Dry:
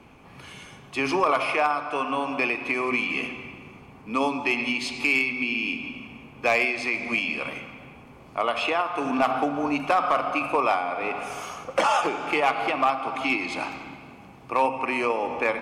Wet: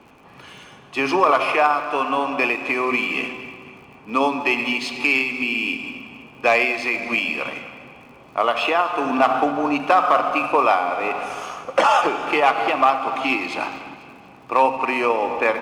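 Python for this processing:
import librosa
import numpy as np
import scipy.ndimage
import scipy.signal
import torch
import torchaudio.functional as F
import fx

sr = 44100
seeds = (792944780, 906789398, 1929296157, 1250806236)

p1 = fx.lowpass(x, sr, hz=3900.0, slope=6)
p2 = fx.low_shelf(p1, sr, hz=170.0, db=-10.5)
p3 = fx.notch(p2, sr, hz=2200.0, q=15.0)
p4 = np.sign(p3) * np.maximum(np.abs(p3) - 10.0 ** (-39.0 / 20.0), 0.0)
p5 = p3 + F.gain(torch.from_numpy(p4), -8.0).numpy()
p6 = fx.dmg_crackle(p5, sr, seeds[0], per_s=57.0, level_db=-47.0)
p7 = p6 + fx.echo_feedback(p6, sr, ms=246, feedback_pct=48, wet_db=-17.5, dry=0)
y = F.gain(torch.from_numpy(p7), 4.0).numpy()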